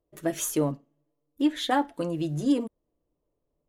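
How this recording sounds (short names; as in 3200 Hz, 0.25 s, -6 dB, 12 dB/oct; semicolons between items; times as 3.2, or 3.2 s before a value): noise floor -80 dBFS; spectral tilt -5.0 dB/oct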